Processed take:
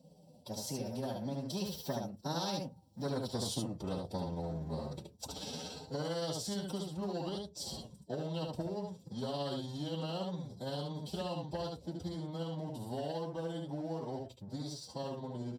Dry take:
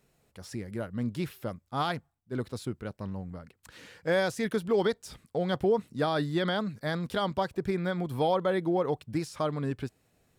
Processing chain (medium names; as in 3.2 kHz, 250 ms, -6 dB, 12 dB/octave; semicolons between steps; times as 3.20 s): Doppler pass-by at 2.17 s, 44 m/s, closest 6.2 m; compression 4:1, threshold -57 dBFS, peak gain reduction 22.5 dB; bass shelf 120 Hz +10.5 dB; AM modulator 26 Hz, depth 25%; FFT filter 390 Hz 0 dB, 550 Hz +9 dB, 1.9 kHz -21 dB, 2.9 kHz +2 dB; waveshaping leveller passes 1; doubling 49 ms -5 dB; time stretch by phase-locked vocoder 1.5×; reverberation, pre-delay 3 ms, DRR 8 dB; spectrum-flattening compressor 2:1; trim +4 dB